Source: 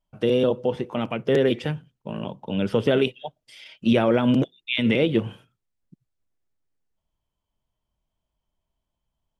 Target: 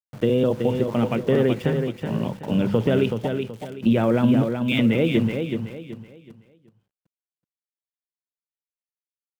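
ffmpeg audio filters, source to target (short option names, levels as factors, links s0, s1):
-af "bass=f=250:g=7,treble=f=4000:g=-13,bandreject=f=50:t=h:w=6,bandreject=f=100:t=h:w=6,bandreject=f=150:t=h:w=6,bandreject=f=200:t=h:w=6,acompressor=threshold=0.112:ratio=2.5,aeval=exprs='val(0)*gte(abs(val(0)),0.00841)':c=same,aecho=1:1:376|752|1128|1504:0.501|0.155|0.0482|0.0149,volume=1.26"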